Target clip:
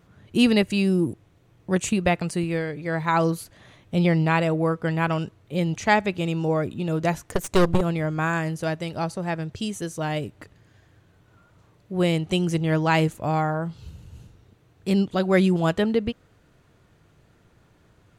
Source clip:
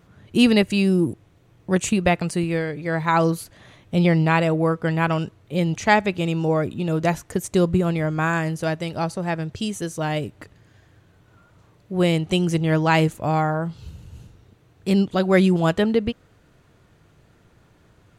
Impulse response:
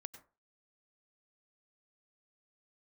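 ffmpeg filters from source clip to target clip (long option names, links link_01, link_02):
-filter_complex "[0:a]asettb=1/sr,asplit=3[link_01][link_02][link_03];[link_01]atrim=end=7.234[link_04];[link_02]atrim=start=7.23:end=7.81,asetpts=PTS-STARTPTS,afade=type=in:duration=0.004:curve=qsin,afade=type=out:start_time=0.576:duration=0.004:curve=qsin,aeval=exprs='0.447*(cos(1*acos(clip(val(0)/0.447,-1,1)))-cos(1*PI/2))+0.126*(cos(6*acos(clip(val(0)/0.447,-1,1)))-cos(6*PI/2))':channel_layout=same[link_05];[link_03]atrim=start=7.806[link_06];[link_04][link_05]acrossfade=duration=0.004:curve1=hsin:curve2=qsin[link_07];[link_07][link_06]acrossfade=duration=0.004:curve1=qsin:curve2=hsin,volume=-2.5dB"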